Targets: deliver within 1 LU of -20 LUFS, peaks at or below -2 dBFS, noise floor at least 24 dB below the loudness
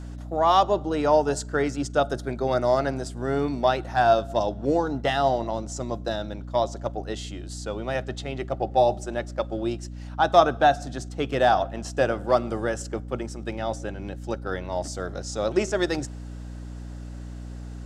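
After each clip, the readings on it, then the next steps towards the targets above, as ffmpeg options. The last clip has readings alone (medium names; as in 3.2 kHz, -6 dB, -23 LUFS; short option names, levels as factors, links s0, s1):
hum 60 Hz; highest harmonic 300 Hz; hum level -34 dBFS; loudness -25.5 LUFS; peak level -4.0 dBFS; loudness target -20.0 LUFS
-> -af "bandreject=f=60:t=h:w=6,bandreject=f=120:t=h:w=6,bandreject=f=180:t=h:w=6,bandreject=f=240:t=h:w=6,bandreject=f=300:t=h:w=6"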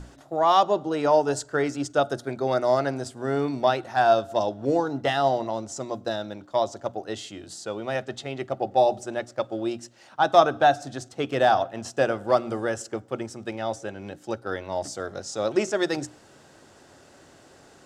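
hum not found; loudness -25.5 LUFS; peak level -4.0 dBFS; loudness target -20.0 LUFS
-> -af "volume=1.88,alimiter=limit=0.794:level=0:latency=1"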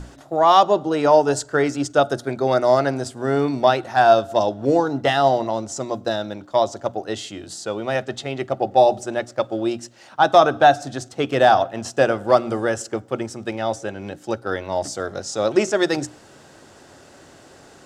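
loudness -20.0 LUFS; peak level -2.0 dBFS; noise floor -48 dBFS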